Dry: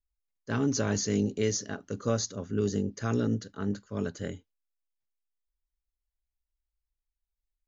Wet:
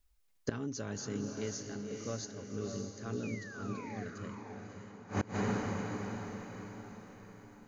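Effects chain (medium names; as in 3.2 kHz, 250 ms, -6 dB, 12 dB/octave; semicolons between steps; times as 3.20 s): painted sound fall, 3.23–4.04 s, 690–2600 Hz -38 dBFS; echo that smears into a reverb 563 ms, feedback 46%, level -4 dB; inverted gate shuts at -31 dBFS, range -24 dB; trim +12.5 dB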